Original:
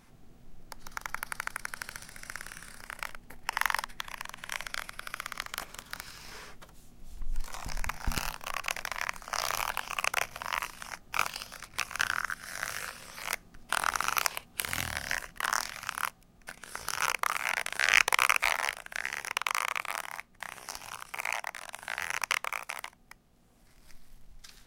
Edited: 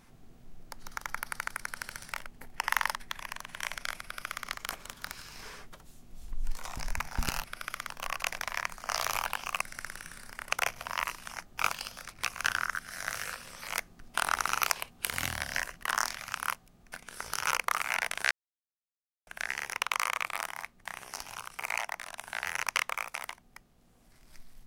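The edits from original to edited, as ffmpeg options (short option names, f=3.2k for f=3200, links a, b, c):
-filter_complex "[0:a]asplit=8[a][b][c][d][e][f][g][h];[a]atrim=end=2.122[i];[b]atrim=start=3.008:end=8.332[j];[c]atrim=start=4.898:end=5.352[k];[d]atrim=start=8.328:end=10.052[l];[e]atrim=start=2.118:end=3.012[m];[f]atrim=start=10.048:end=17.86,asetpts=PTS-STARTPTS,afade=t=out:st=7.808:d=0.004:c=hsin[n];[g]atrim=start=17.86:end=18.82,asetpts=PTS-STARTPTS,volume=0[o];[h]atrim=start=18.82,asetpts=PTS-STARTPTS,afade=t=in:d=0.004:c=hsin[p];[i][j]acrossfade=d=0.004:c1=hsin:c2=hsin[q];[q][k]acrossfade=d=0.004:c1=hsin:c2=hsin[r];[r][l]acrossfade=d=0.004:c1=hsin:c2=hsin[s];[s][m]acrossfade=d=0.004:c1=hsin:c2=hsin[t];[n][o][p]concat=n=3:v=0:a=1[u];[t][u]acrossfade=d=0.004:c1=hsin:c2=hsin"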